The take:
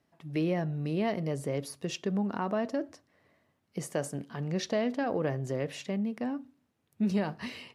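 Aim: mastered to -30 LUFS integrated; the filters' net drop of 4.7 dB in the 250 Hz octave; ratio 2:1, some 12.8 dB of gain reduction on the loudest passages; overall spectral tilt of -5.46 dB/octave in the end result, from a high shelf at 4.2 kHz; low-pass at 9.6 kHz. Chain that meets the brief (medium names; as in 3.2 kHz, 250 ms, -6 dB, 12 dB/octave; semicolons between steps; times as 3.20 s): low-pass 9.6 kHz; peaking EQ 250 Hz -6.5 dB; treble shelf 4.2 kHz -3.5 dB; compression 2:1, threshold -52 dBFS; trim +17 dB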